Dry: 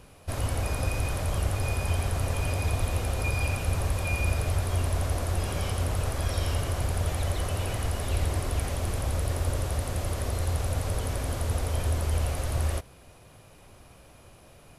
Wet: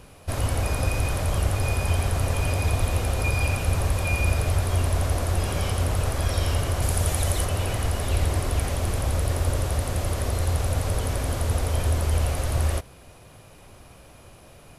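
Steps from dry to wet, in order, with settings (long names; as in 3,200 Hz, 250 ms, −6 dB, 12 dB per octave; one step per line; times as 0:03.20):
0:06.82–0:07.45: parametric band 9,800 Hz +8 dB 1.5 octaves
level +4 dB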